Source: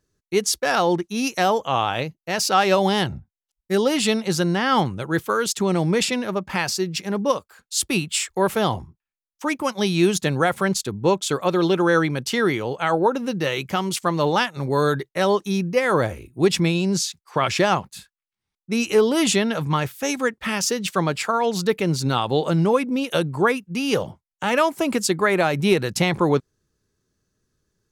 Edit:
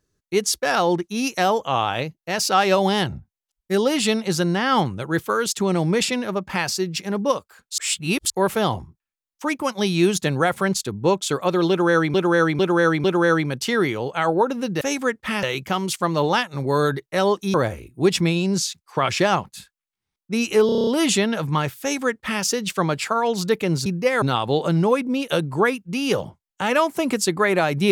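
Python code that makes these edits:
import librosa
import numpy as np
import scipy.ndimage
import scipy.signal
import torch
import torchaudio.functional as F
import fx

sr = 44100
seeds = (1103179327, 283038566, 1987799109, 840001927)

y = fx.edit(x, sr, fx.reverse_span(start_s=7.78, length_s=0.52),
    fx.repeat(start_s=11.69, length_s=0.45, count=4),
    fx.move(start_s=15.57, length_s=0.36, to_s=22.04),
    fx.stutter(start_s=19.05, slice_s=0.03, count=8),
    fx.duplicate(start_s=19.99, length_s=0.62, to_s=13.46), tone=tone)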